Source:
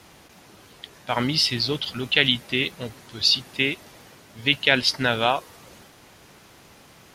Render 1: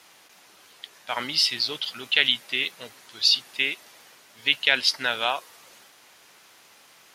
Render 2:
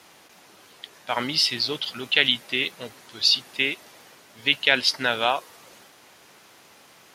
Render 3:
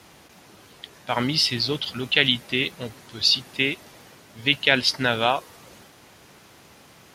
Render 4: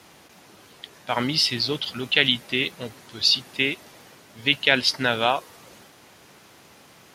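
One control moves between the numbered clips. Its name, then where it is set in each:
high-pass filter, corner frequency: 1,200, 460, 56, 140 Hertz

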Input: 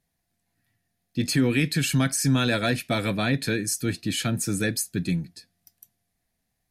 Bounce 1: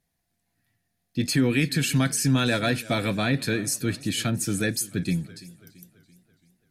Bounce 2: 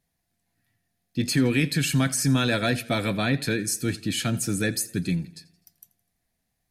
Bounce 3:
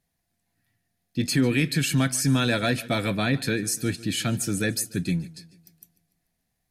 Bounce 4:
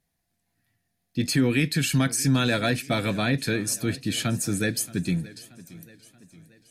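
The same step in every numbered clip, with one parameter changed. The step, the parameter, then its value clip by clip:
feedback echo with a swinging delay time, delay time: 335, 84, 146, 628 milliseconds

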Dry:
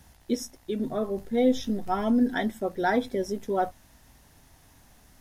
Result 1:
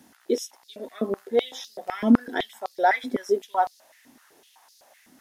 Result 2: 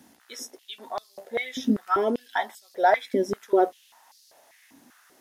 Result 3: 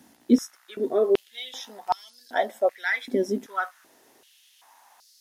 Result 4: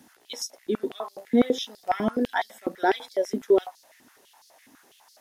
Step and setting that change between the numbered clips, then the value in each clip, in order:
high-pass on a step sequencer, speed: 7.9, 5.1, 2.6, 12 Hertz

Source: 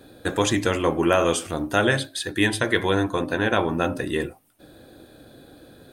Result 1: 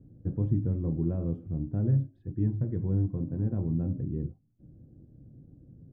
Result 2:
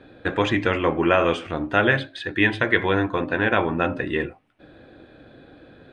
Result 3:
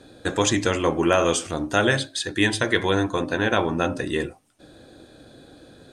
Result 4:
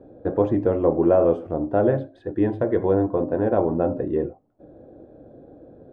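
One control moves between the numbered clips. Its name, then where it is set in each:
low-pass with resonance, frequency: 150, 2,400, 7,100, 600 Hertz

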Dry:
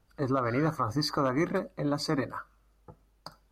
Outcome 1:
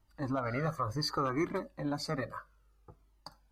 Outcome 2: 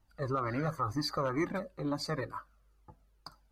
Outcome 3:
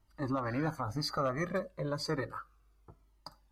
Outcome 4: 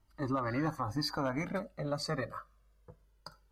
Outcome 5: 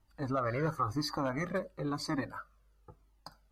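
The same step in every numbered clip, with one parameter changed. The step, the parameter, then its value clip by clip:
flanger whose copies keep moving one way, speed: 0.64, 2.1, 0.32, 0.2, 0.97 Hertz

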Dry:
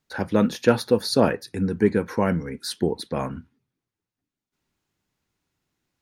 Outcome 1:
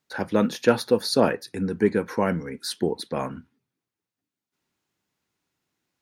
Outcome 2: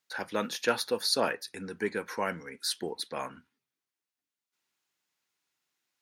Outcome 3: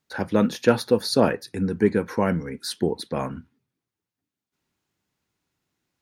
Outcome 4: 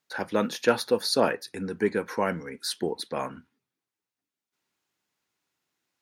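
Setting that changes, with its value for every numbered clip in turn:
high-pass filter, corner frequency: 180, 1,500, 69, 570 Hertz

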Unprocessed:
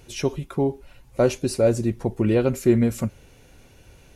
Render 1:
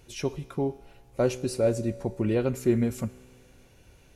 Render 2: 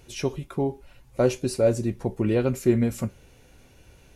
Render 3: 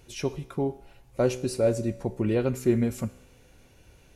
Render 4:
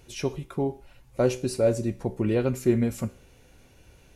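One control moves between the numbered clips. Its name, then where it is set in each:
tuned comb filter, decay: 2, 0.18, 0.98, 0.45 seconds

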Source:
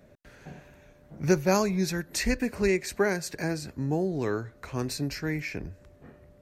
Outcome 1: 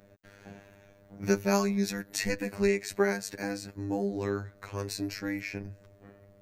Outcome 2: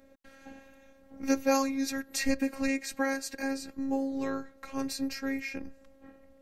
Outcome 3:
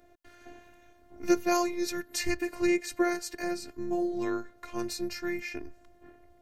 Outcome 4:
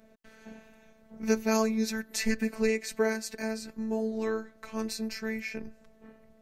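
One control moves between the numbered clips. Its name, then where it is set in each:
phases set to zero, frequency: 100, 270, 350, 220 Hertz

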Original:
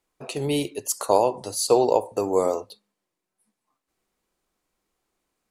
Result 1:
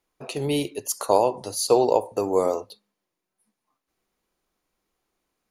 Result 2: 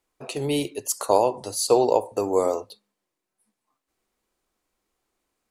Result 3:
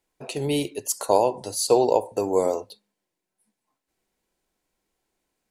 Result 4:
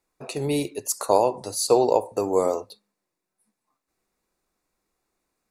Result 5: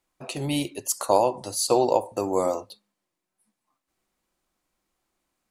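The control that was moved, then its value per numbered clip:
notch filter, centre frequency: 8,000, 170, 1,200, 3,100, 440 Hertz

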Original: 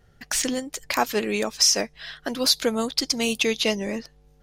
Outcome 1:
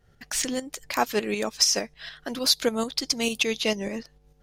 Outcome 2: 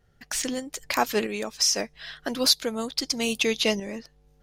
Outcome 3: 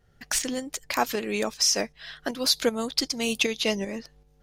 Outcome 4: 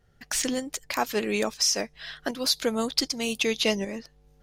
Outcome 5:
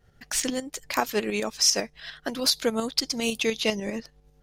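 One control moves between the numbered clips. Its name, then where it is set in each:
shaped tremolo, speed: 6.7, 0.79, 2.6, 1.3, 10 Hertz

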